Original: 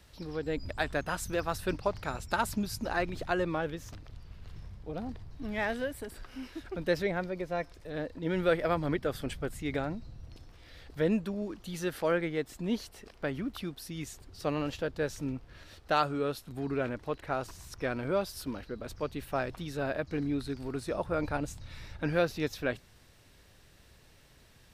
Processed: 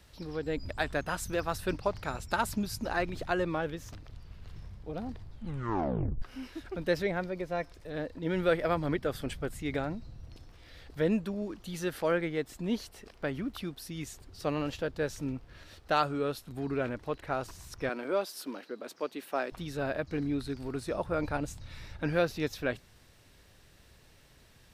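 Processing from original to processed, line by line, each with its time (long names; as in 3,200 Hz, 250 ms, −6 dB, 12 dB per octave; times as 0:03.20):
0:05.22: tape stop 1.00 s
0:17.89–0:19.52: high-pass filter 250 Hz 24 dB per octave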